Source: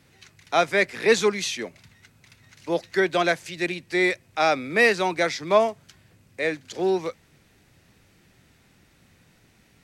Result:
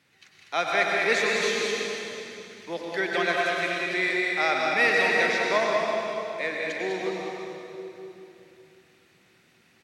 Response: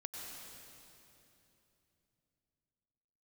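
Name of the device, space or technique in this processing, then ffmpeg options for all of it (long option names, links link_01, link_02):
PA in a hall: -filter_complex "[0:a]highpass=130,equalizer=frequency=2300:width_type=o:width=2.6:gain=7.5,aecho=1:1:199:0.562[link_01];[1:a]atrim=start_sample=2205[link_02];[link_01][link_02]afir=irnorm=-1:irlink=0,volume=-5dB"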